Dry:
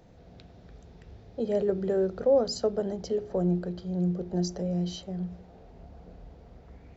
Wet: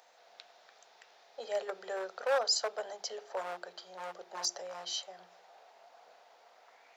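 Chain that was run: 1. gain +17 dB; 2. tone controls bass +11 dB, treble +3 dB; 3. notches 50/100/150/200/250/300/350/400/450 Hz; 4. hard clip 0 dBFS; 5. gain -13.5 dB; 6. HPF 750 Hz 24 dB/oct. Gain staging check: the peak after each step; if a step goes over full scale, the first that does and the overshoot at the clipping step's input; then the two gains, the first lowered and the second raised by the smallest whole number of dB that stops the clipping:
+3.0, +6.0, +6.5, 0.0, -13.5, -18.0 dBFS; step 1, 6.5 dB; step 1 +10 dB, step 5 -6.5 dB

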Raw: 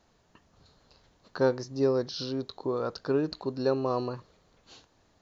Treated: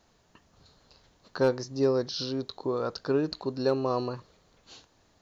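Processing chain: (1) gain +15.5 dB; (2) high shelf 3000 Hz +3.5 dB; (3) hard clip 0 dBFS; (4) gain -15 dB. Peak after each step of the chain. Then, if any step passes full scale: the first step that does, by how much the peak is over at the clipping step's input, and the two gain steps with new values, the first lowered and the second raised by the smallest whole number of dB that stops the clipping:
+3.0, +3.5, 0.0, -15.0 dBFS; step 1, 3.5 dB; step 1 +11.5 dB, step 4 -11 dB

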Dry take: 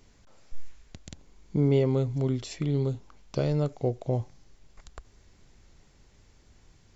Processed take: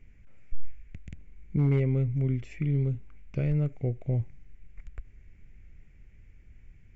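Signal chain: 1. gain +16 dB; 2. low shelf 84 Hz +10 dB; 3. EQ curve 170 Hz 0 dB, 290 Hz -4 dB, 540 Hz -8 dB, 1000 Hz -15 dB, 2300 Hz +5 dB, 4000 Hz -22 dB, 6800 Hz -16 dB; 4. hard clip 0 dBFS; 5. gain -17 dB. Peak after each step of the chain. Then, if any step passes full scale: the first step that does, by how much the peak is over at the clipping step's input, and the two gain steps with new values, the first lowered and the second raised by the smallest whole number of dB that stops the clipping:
+2.5, +4.5, +3.5, 0.0, -17.0 dBFS; step 1, 3.5 dB; step 1 +12 dB, step 5 -13 dB

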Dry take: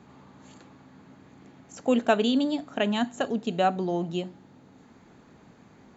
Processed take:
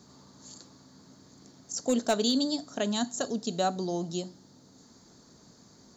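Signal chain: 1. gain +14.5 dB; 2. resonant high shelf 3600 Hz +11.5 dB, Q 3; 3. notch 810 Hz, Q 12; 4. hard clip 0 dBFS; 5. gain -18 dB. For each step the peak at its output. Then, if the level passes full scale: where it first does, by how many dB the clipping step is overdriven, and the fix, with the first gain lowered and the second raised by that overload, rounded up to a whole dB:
+4.5, +6.0, +6.0, 0.0, -18.0 dBFS; step 1, 6.0 dB; step 1 +8.5 dB, step 5 -12 dB

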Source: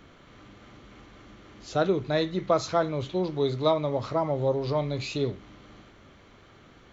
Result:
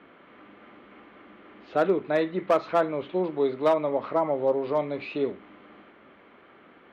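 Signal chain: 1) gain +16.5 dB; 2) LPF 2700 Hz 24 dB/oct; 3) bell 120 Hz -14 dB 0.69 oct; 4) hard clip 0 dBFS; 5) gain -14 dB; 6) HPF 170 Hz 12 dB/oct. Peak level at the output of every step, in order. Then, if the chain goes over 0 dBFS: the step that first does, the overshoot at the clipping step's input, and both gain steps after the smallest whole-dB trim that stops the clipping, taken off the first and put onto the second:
+6.0, +5.5, +5.5, 0.0, -14.0, -11.0 dBFS; step 1, 5.5 dB; step 1 +10.5 dB, step 5 -8 dB

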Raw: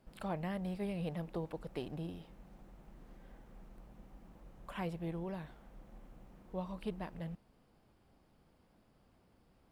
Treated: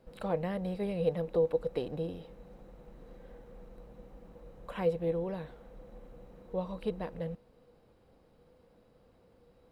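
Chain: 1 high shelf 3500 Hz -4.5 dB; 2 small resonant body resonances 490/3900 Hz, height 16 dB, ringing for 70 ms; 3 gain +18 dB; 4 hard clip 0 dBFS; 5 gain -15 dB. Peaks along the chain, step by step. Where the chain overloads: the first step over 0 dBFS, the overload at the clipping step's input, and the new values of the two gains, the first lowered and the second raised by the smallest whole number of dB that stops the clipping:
-27.0, -21.0, -3.0, -3.0, -18.0 dBFS; no overload

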